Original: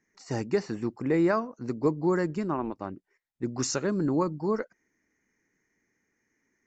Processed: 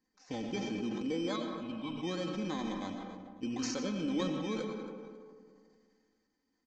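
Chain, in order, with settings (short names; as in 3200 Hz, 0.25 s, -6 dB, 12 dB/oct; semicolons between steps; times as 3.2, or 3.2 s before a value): FFT order left unsorted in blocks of 16 samples; comb 3.9 ms, depth 71%; compressor 2.5:1, threshold -27 dBFS, peak gain reduction 7.5 dB; 1.36–1.98 fixed phaser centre 1800 Hz, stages 6; feedback echo 0.274 s, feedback 28%, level -20 dB; on a send at -5 dB: reverb RT60 1.8 s, pre-delay 55 ms; on the sum: downsampling 16000 Hz; sustainer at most 26 dB/s; gain -7.5 dB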